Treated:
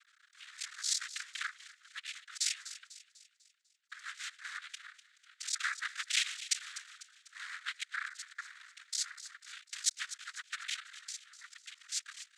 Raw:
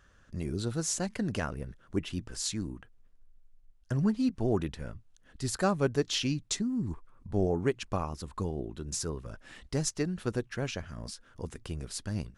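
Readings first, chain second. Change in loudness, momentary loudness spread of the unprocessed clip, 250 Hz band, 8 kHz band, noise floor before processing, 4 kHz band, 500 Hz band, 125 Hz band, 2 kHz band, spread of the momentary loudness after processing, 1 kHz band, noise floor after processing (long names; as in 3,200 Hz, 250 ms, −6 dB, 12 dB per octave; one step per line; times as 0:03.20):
−5.0 dB, 14 LU, below −40 dB, +0.5 dB, −61 dBFS, +1.5 dB, below −40 dB, below −40 dB, +3.5 dB, 18 LU, −9.5 dB, −72 dBFS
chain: sub-harmonics by changed cycles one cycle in 3, muted
cochlear-implant simulation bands 6
Butterworth high-pass 1,300 Hz 72 dB per octave
delay with a high-pass on its return 248 ms, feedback 47%, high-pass 2,200 Hz, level −13.5 dB
level +3.5 dB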